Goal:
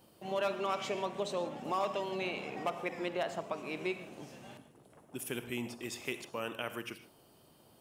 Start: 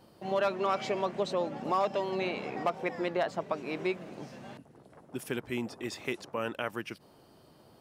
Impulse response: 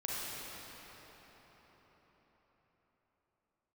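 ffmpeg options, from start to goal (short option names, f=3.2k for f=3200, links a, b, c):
-filter_complex "[0:a]aexciter=amount=1.4:drive=6.4:freq=2.5k,asplit=2[a][b];[1:a]atrim=start_sample=2205,afade=t=out:st=0.21:d=0.01,atrim=end_sample=9702[c];[b][c]afir=irnorm=-1:irlink=0,volume=-6.5dB[d];[a][d]amix=inputs=2:normalize=0,volume=-7.5dB"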